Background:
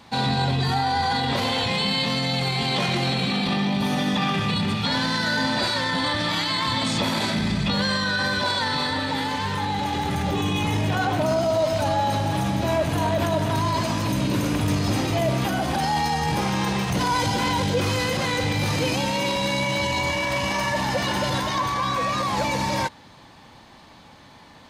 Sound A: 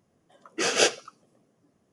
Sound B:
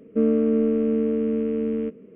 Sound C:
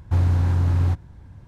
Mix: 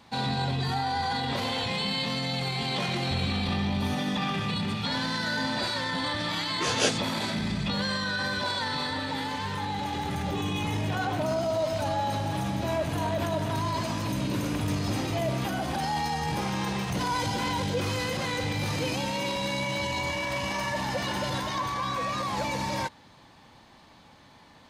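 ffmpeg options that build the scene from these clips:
ffmpeg -i bed.wav -i cue0.wav -i cue1.wav -i cue2.wav -filter_complex "[0:a]volume=-6dB[link_01];[3:a]atrim=end=1.47,asetpts=PTS-STARTPTS,volume=-14.5dB,afade=type=in:duration=0.004:curve=hsin,afade=type=out:start_time=1.466:duration=0.004:curve=hsin,adelay=2990[link_02];[1:a]atrim=end=1.92,asetpts=PTS-STARTPTS,volume=-4.5dB,afade=type=in:duration=0.004:curve=hsin,afade=type=out:start_time=1.916:duration=0.004:curve=hsin,adelay=6020[link_03];[link_01][link_02][link_03]amix=inputs=3:normalize=0" out.wav

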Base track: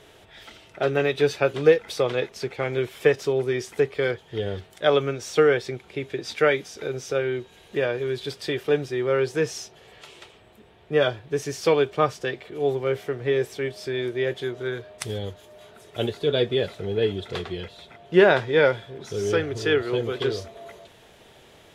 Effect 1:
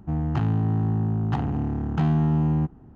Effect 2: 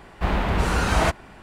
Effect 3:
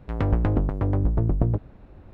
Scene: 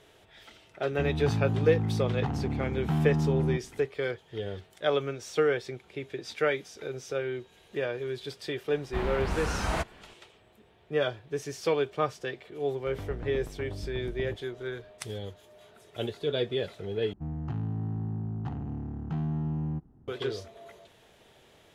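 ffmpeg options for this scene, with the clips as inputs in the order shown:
ffmpeg -i bed.wav -i cue0.wav -i cue1.wav -i cue2.wav -filter_complex "[1:a]asplit=2[link_01][link_02];[0:a]volume=-7dB[link_03];[link_02]lowshelf=frequency=450:gain=5.5[link_04];[link_03]asplit=2[link_05][link_06];[link_05]atrim=end=17.134[link_07];[link_04]atrim=end=2.95,asetpts=PTS-STARTPTS,volume=-14.5dB[link_08];[link_06]atrim=start=20.076[link_09];[link_01]atrim=end=2.95,asetpts=PTS-STARTPTS,volume=-5.5dB,afade=type=in:duration=0.004:curve=hsin,afade=type=out:start_time=2.946:duration=0.004:curve=hsin,adelay=910[link_10];[2:a]atrim=end=1.42,asetpts=PTS-STARTPTS,volume=-9.5dB,afade=type=in:duration=0.004:curve=hsin,afade=type=out:start_time=1.416:duration=0.004:curve=hsin,adelay=8720[link_11];[3:a]atrim=end=2.13,asetpts=PTS-STARTPTS,volume=-16.5dB,afade=type=in:duration=0.004:curve=hsin,afade=type=out:start_time=2.126:duration=0.004:curve=hsin,adelay=12780[link_12];[link_07][link_08]acrossfade=duration=0.004:curve1=hsin:curve2=hsin[link_13];[link_13][link_09]acrossfade=duration=0.004:curve1=hsin:curve2=hsin[link_14];[link_14][link_10][link_11][link_12]amix=inputs=4:normalize=0" out.wav

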